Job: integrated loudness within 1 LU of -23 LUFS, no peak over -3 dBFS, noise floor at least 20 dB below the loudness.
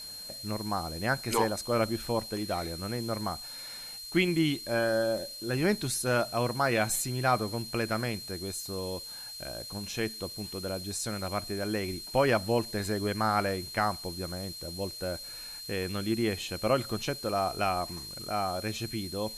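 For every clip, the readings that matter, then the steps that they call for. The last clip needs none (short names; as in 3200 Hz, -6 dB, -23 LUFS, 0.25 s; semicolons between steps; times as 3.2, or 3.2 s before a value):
steady tone 4200 Hz; tone level -41 dBFS; noise floor -43 dBFS; noise floor target -51 dBFS; loudness -31.0 LUFS; peak -13.0 dBFS; loudness target -23.0 LUFS
-> notch 4200 Hz, Q 30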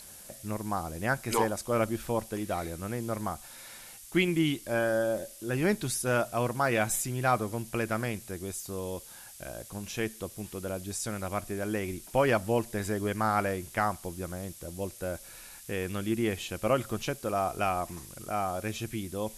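steady tone none; noise floor -49 dBFS; noise floor target -52 dBFS
-> denoiser 6 dB, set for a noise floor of -49 dBFS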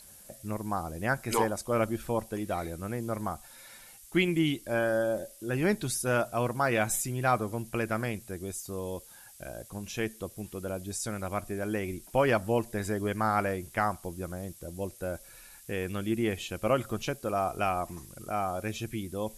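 noise floor -53 dBFS; loudness -31.5 LUFS; peak -13.0 dBFS; loudness target -23.0 LUFS
-> gain +8.5 dB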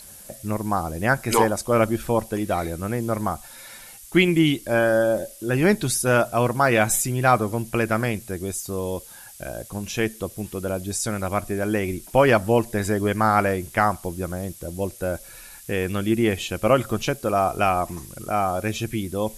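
loudness -23.0 LUFS; peak -4.5 dBFS; noise floor -44 dBFS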